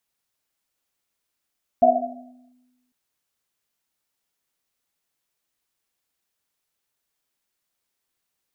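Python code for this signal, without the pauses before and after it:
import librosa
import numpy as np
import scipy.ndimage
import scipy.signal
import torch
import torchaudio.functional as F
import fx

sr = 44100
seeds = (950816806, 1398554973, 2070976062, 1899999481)

y = fx.risset_drum(sr, seeds[0], length_s=1.1, hz=250.0, decay_s=1.35, noise_hz=690.0, noise_width_hz=100.0, noise_pct=75)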